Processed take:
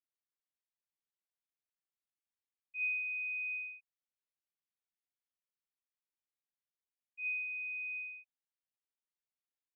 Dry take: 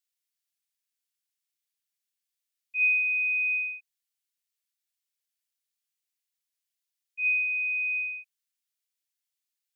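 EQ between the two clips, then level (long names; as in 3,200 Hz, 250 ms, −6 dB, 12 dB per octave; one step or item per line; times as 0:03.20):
high-frequency loss of the air 380 metres
−6.5 dB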